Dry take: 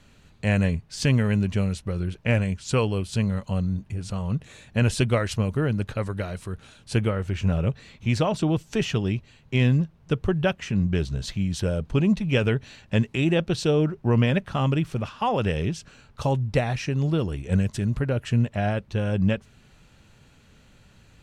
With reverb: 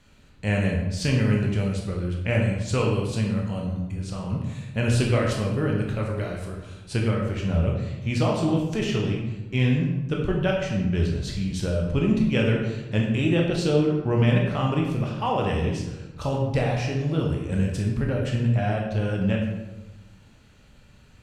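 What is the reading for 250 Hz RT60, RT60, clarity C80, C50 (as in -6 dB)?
1.4 s, 1.1 s, 5.5 dB, 3.0 dB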